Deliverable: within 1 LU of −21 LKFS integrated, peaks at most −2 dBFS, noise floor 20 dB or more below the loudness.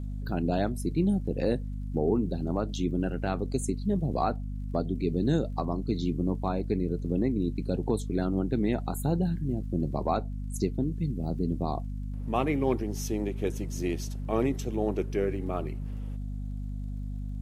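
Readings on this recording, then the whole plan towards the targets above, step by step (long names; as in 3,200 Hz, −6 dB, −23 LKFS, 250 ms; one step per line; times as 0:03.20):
crackle rate 43 per second; mains hum 50 Hz; hum harmonics up to 250 Hz; level of the hum −32 dBFS; integrated loudness −30.5 LKFS; sample peak −12.5 dBFS; target loudness −21.0 LKFS
→ click removal
hum removal 50 Hz, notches 5
level +9.5 dB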